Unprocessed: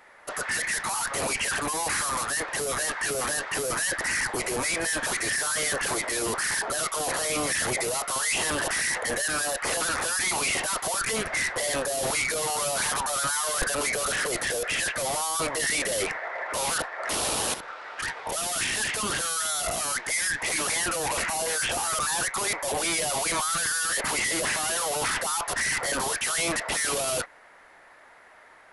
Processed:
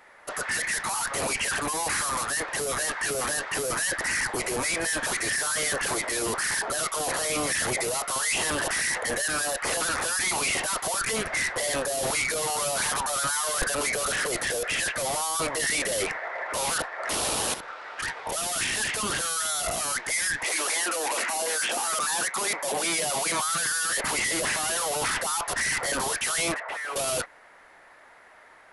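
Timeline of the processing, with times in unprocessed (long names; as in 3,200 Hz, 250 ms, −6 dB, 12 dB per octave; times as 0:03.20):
0:20.43–0:23.93: high-pass filter 340 Hz → 90 Hz 24 dB per octave
0:26.54–0:26.96: three-way crossover with the lows and the highs turned down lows −22 dB, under 480 Hz, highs −20 dB, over 2,300 Hz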